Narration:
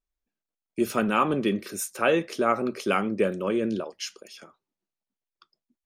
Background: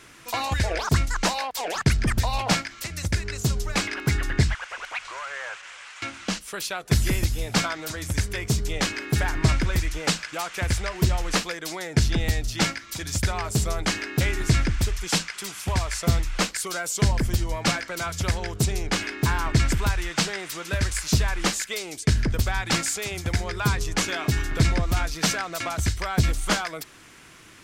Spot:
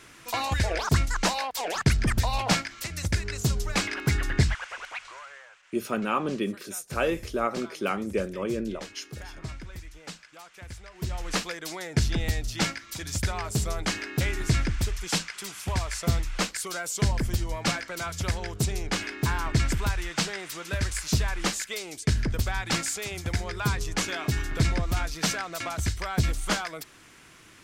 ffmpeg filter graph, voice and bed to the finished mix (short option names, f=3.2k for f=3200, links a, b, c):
-filter_complex "[0:a]adelay=4950,volume=-4dB[a];[1:a]volume=12.5dB,afade=t=out:st=4.61:d=0.87:silence=0.158489,afade=t=in:st=10.91:d=0.51:silence=0.199526[b];[a][b]amix=inputs=2:normalize=0"